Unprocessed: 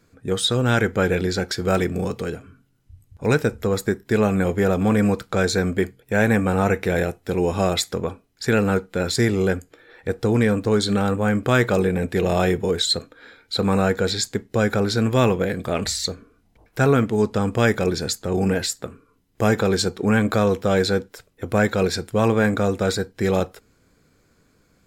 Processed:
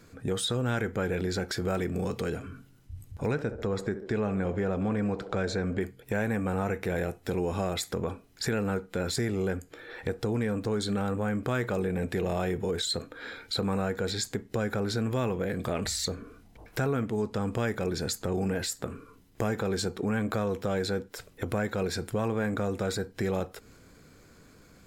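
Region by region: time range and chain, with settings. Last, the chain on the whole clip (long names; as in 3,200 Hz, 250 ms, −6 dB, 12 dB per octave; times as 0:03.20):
0:03.31–0:05.81: high-frequency loss of the air 84 metres + feedback echo with a band-pass in the loop 68 ms, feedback 62%, band-pass 510 Hz, level −14.5 dB
whole clip: dynamic equaliser 4,600 Hz, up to −4 dB, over −38 dBFS, Q 0.73; downward compressor 4 to 1, threshold −34 dBFS; transient designer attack −2 dB, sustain +3 dB; level +5 dB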